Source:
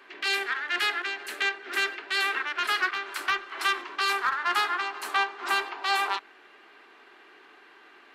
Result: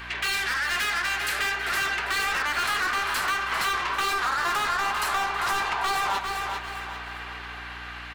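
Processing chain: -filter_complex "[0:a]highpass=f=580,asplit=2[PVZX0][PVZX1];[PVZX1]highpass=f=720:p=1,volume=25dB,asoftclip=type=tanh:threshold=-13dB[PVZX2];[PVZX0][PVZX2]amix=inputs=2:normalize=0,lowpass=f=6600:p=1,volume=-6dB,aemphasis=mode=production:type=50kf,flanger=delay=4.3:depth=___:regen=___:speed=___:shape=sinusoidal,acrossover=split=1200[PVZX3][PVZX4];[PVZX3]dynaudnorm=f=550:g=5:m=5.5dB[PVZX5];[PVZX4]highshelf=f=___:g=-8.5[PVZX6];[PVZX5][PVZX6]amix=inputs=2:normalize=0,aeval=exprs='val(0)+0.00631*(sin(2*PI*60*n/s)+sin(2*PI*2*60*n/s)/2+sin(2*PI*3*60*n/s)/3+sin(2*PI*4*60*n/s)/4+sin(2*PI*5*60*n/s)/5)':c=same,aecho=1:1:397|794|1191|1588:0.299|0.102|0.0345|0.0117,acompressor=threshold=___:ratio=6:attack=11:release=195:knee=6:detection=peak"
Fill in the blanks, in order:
8.8, -59, 1.2, 7600, -23dB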